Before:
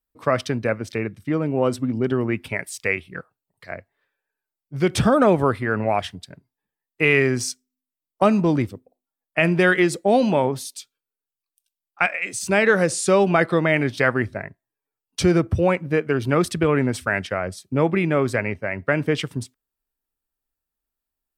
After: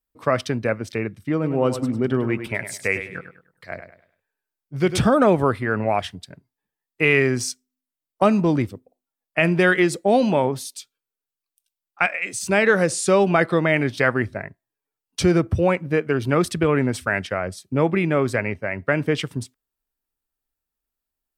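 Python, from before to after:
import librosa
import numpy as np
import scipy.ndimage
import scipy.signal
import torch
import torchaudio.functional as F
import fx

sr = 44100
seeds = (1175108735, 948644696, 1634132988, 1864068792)

y = fx.echo_feedback(x, sr, ms=101, feedback_pct=32, wet_db=-10, at=(1.43, 5.02), fade=0.02)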